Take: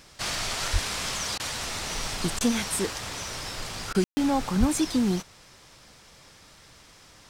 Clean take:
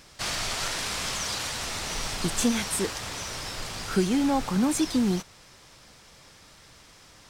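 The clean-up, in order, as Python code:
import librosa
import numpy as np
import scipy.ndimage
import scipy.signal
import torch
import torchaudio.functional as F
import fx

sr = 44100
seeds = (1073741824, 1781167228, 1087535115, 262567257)

y = fx.highpass(x, sr, hz=140.0, slope=24, at=(0.72, 0.84), fade=0.02)
y = fx.highpass(y, sr, hz=140.0, slope=24, at=(4.59, 4.71), fade=0.02)
y = fx.fix_ambience(y, sr, seeds[0], print_start_s=6.78, print_end_s=7.28, start_s=4.04, end_s=4.17)
y = fx.fix_interpolate(y, sr, at_s=(1.38, 2.39, 3.93), length_ms=16.0)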